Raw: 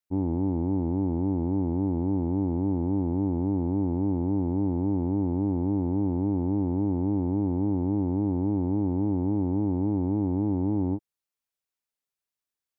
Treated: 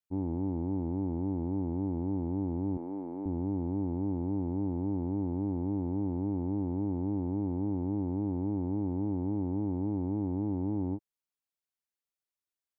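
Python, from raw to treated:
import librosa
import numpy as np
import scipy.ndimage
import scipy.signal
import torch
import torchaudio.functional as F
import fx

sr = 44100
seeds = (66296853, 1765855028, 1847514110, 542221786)

y = fx.highpass(x, sr, hz=330.0, slope=12, at=(2.77, 3.26))
y = y * librosa.db_to_amplitude(-6.0)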